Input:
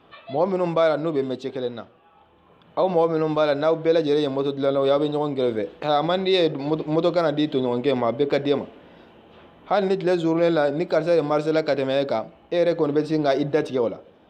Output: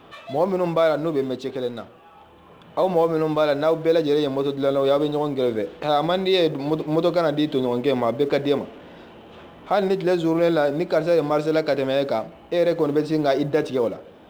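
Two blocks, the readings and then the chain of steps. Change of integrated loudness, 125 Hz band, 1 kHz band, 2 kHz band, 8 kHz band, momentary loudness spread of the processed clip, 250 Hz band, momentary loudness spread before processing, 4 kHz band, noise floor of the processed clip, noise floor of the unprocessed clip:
+0.5 dB, +0.5 dB, +0.5 dB, +0.5 dB, can't be measured, 7 LU, +0.5 dB, 7 LU, +0.5 dB, −48 dBFS, −55 dBFS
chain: mu-law and A-law mismatch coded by mu

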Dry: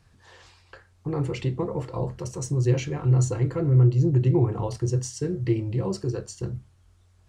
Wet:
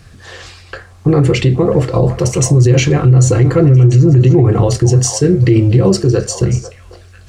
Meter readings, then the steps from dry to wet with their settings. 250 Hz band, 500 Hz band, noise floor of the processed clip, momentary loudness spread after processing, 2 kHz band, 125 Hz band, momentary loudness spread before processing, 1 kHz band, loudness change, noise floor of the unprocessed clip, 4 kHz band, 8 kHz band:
+14.5 dB, +15.0 dB, −40 dBFS, 6 LU, +17.5 dB, +13.5 dB, 13 LU, +13.5 dB, +14.0 dB, −60 dBFS, can't be measured, +18.0 dB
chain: parametric band 930 Hz −13 dB 0.21 octaves
on a send: echo through a band-pass that steps 495 ms, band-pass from 830 Hz, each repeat 1.4 octaves, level −9 dB
on the sum: boost into a limiter +20 dB
level −1 dB

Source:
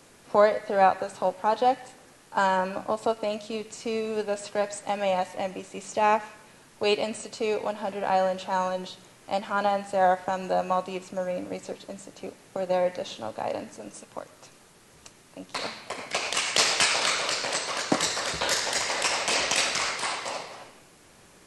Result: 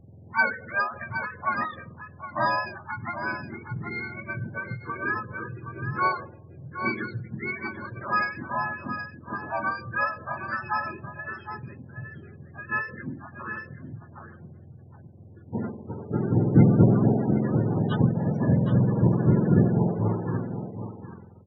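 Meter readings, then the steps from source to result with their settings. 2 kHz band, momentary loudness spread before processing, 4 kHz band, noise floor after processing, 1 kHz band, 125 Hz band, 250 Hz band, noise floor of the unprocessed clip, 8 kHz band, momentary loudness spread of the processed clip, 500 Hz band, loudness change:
+1.5 dB, 15 LU, −20.0 dB, −48 dBFS, −4.0 dB, +19.5 dB, +10.5 dB, −55 dBFS, below −40 dB, 20 LU, −6.0 dB, +0.5 dB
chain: frequency axis turned over on the octave scale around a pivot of 970 Hz
low-pass that shuts in the quiet parts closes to 630 Hz, open at −18 dBFS
spectral peaks only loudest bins 32
on a send: single-tap delay 767 ms −9.5 dB
on the sum: every ending faded ahead of time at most 130 dB per second

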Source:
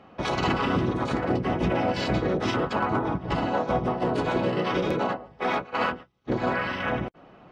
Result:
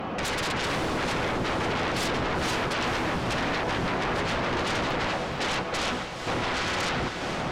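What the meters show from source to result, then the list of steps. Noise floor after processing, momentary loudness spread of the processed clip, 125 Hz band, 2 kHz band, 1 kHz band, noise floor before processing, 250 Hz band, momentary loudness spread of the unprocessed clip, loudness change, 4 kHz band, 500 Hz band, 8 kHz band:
−33 dBFS, 2 LU, −3.0 dB, +3.0 dB, −1.0 dB, −52 dBFS, −4.0 dB, 4 LU, −1.0 dB, +6.0 dB, −3.0 dB, can't be measured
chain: downward compressor 3 to 1, threshold −42 dBFS, peak gain reduction 16 dB
sine wavefolder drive 16 dB, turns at −25.5 dBFS
on a send: feedback delay with all-pass diffusion 484 ms, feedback 55%, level −6.5 dB
on the sum: highs frequency-modulated by the lows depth 0.25 ms

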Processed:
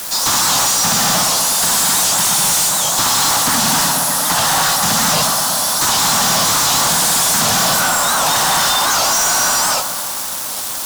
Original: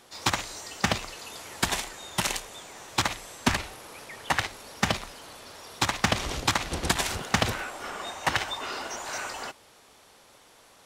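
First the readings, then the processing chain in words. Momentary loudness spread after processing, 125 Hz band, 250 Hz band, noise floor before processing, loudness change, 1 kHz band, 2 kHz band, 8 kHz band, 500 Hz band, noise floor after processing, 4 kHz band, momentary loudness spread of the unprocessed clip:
3 LU, +7.5 dB, +9.5 dB, −56 dBFS, +16.5 dB, +15.5 dB, +11.0 dB, +23.0 dB, +12.0 dB, −23 dBFS, +16.5 dB, 15 LU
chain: high-shelf EQ 3,600 Hz +11 dB
on a send: feedback echo with a low-pass in the loop 123 ms, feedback 69%, low-pass 3,700 Hz, level −15 dB
on the sum: reverb whose tail is shaped and stops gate 320 ms rising, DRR −4 dB
in parallel at −5 dB: bit-depth reduction 6 bits, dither triangular
on the sum: high-pass filter 150 Hz 24 dB per octave
phaser with its sweep stopped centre 960 Hz, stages 4
fuzz pedal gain 39 dB, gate −40 dBFS
wow of a warped record 78 rpm, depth 160 cents

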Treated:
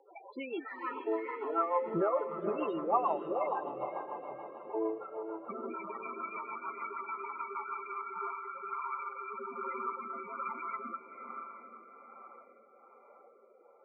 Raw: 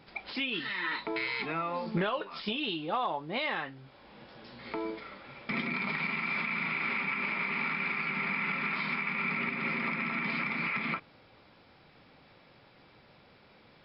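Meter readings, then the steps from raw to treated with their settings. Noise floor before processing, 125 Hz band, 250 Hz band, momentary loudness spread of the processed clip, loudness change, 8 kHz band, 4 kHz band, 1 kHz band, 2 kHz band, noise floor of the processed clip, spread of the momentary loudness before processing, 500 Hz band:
−60 dBFS, −12.5 dB, −4.5 dB, 14 LU, −5.0 dB, can't be measured, below −20 dB, +1.5 dB, −16.5 dB, −61 dBFS, 8 LU, +4.0 dB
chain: flat-topped bell 700 Hz +14 dB 2.4 octaves
spectral peaks only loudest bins 8
feedback delay with all-pass diffusion 472 ms, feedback 56%, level −7 dB
rotating-speaker cabinet horn 6.7 Hz, later 1.2 Hz, at 0:07.51
level −7 dB

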